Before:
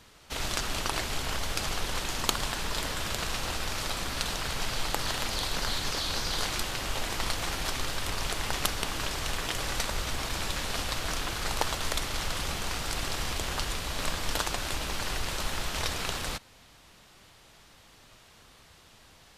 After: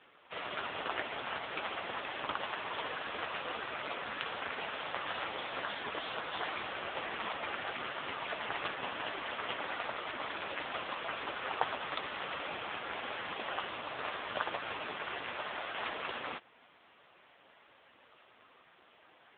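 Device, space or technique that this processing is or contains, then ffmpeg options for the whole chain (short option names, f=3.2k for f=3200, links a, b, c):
telephone: -filter_complex "[0:a]asettb=1/sr,asplit=3[a][b][c];[a]atrim=end=1.634[d];[b]atrim=start=1.63:end=3.25,asetpts=PTS-STARTPTS,afade=t=in:d=0.004:c=qsin,afade=t=out:st=1.616:d=0.004:c=qsin,highpass=f=71:p=1[e];[c]atrim=start=3.246[f];[d][e]acrossfade=d=0.004:c1=hsin:c2=qsin[g];[g][f]acrossfade=d=0.004:c1=qsin:c2=hsin,highpass=320,lowpass=3.1k,asoftclip=type=tanh:threshold=-11.5dB,volume=2.5dB" -ar 8000 -c:a libopencore_amrnb -b:a 5900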